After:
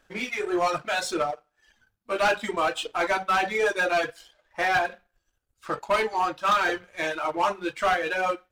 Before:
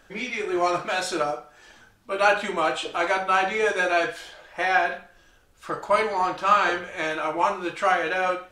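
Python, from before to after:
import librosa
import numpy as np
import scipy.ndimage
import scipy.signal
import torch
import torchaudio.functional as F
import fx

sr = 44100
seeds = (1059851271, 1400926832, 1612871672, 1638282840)

y = fx.dereverb_blind(x, sr, rt60_s=1.4)
y = 10.0 ** (-21.0 / 20.0) * np.tanh(y / 10.0 ** (-21.0 / 20.0))
y = fx.power_curve(y, sr, exponent=1.4)
y = y * 10.0 ** (4.0 / 20.0)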